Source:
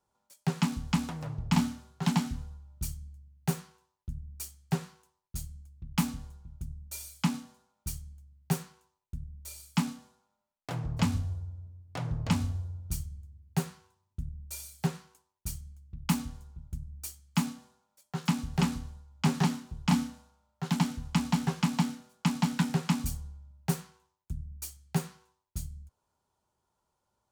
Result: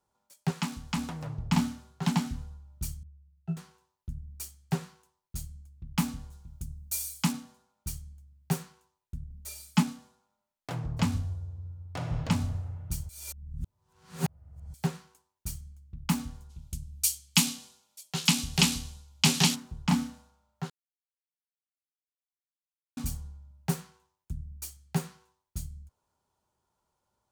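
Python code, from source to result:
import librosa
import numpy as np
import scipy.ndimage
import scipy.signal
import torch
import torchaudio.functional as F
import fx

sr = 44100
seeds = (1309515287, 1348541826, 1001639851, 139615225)

y = fx.low_shelf(x, sr, hz=480.0, db=-6.5, at=(0.51, 0.97))
y = fx.octave_resonator(y, sr, note='E', decay_s=0.15, at=(3.03, 3.57))
y = fx.high_shelf(y, sr, hz=fx.line((6.31, 3100.0), (7.31, 5400.0)), db=10.5, at=(6.31, 7.31), fade=0.02)
y = fx.comb(y, sr, ms=4.7, depth=0.96, at=(9.3, 9.83))
y = fx.reverb_throw(y, sr, start_s=11.35, length_s=0.81, rt60_s=2.6, drr_db=3.0)
y = fx.band_shelf(y, sr, hz=5800.0, db=15.0, octaves=2.9, at=(16.49, 19.54), fade=0.02)
y = fx.edit(y, sr, fx.reverse_span(start_s=13.09, length_s=1.65),
    fx.silence(start_s=20.7, length_s=2.27), tone=tone)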